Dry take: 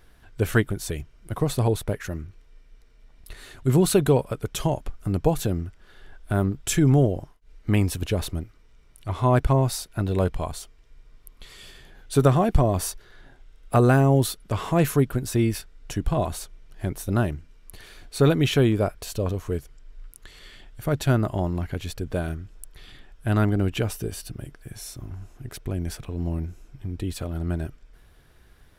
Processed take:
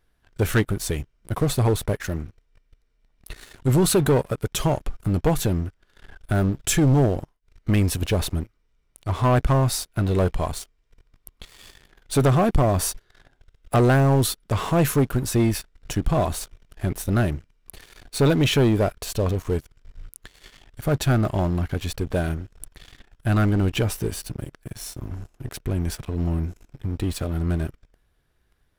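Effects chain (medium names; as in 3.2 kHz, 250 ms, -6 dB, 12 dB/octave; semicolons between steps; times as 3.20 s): waveshaping leveller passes 3; trim -7 dB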